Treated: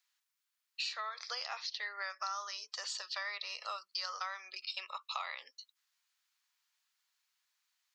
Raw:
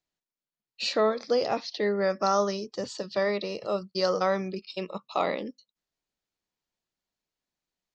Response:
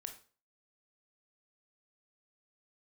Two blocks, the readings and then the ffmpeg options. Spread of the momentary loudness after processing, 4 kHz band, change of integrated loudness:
5 LU, -3.5 dB, -11.5 dB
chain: -af "highpass=f=1.1k:w=0.5412,highpass=f=1.1k:w=1.3066,acompressor=threshold=-47dB:ratio=6,volume=9dB"

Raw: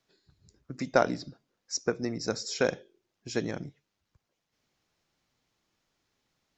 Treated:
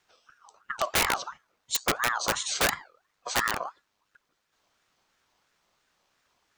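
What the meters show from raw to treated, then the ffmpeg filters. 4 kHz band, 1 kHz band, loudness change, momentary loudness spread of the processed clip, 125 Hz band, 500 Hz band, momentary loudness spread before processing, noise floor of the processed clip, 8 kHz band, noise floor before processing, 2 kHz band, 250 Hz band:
+8.5 dB, +6.5 dB, +4.0 dB, 14 LU, -4.5 dB, -5.5 dB, 20 LU, -77 dBFS, n/a, -83 dBFS, +8.0 dB, -7.5 dB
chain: -af "aeval=exprs='(mod(13.3*val(0)+1,2)-1)/13.3':c=same,bandreject=f=6.3k:w=15,aeval=exprs='val(0)*sin(2*PI*1200*n/s+1200*0.3/2.9*sin(2*PI*2.9*n/s))':c=same,volume=8.5dB"

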